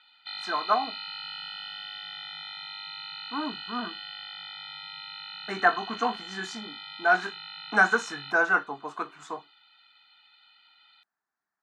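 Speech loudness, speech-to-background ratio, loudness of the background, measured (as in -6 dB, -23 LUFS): -27.5 LUFS, 10.5 dB, -38.0 LUFS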